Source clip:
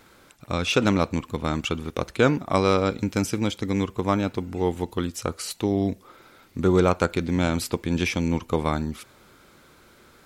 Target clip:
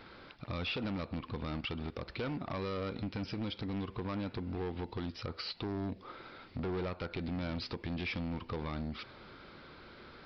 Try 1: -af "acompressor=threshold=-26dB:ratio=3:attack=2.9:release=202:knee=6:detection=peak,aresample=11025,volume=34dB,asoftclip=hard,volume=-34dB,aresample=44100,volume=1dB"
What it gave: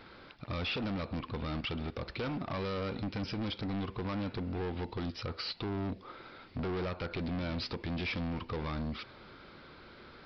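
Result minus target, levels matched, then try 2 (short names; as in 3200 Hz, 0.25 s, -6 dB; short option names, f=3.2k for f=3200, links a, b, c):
compressor: peak gain reduction -5 dB
-af "acompressor=threshold=-33.5dB:ratio=3:attack=2.9:release=202:knee=6:detection=peak,aresample=11025,volume=34dB,asoftclip=hard,volume=-34dB,aresample=44100,volume=1dB"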